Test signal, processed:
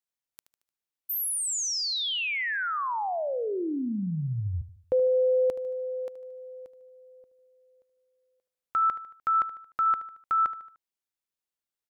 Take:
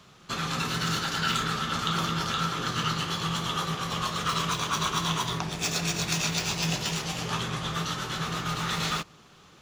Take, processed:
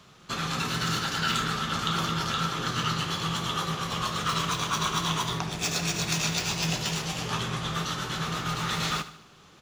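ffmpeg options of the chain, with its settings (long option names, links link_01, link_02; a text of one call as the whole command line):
ffmpeg -i in.wav -af "aecho=1:1:75|150|225|300:0.188|0.0904|0.0434|0.0208" out.wav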